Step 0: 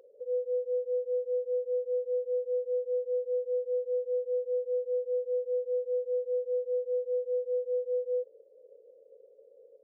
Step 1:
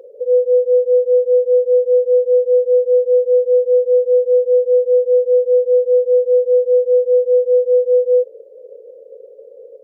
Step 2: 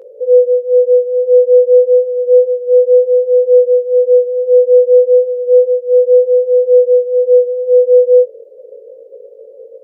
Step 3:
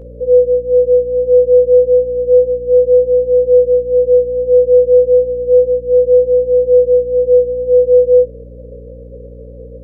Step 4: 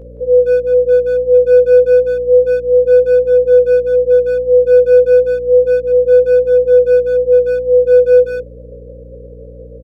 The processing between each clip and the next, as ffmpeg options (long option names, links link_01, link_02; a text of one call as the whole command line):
ffmpeg -i in.wav -af "equalizer=frequency=460:width=0.81:gain=9.5,volume=8.5dB" out.wav
ffmpeg -i in.wav -af "flanger=delay=17.5:depth=4.7:speed=0.31,volume=6dB" out.wav
ffmpeg -i in.wav -af "aeval=exprs='val(0)+0.0251*(sin(2*PI*60*n/s)+sin(2*PI*2*60*n/s)/2+sin(2*PI*3*60*n/s)/3+sin(2*PI*4*60*n/s)/4+sin(2*PI*5*60*n/s)/5)':channel_layout=same,volume=-1dB" out.wav
ffmpeg -i in.wav -filter_complex "[0:a]asplit=2[link_01][link_02];[link_02]adelay=170,highpass=300,lowpass=3400,asoftclip=type=hard:threshold=-10.5dB,volume=-7dB[link_03];[link_01][link_03]amix=inputs=2:normalize=0,volume=-1dB" out.wav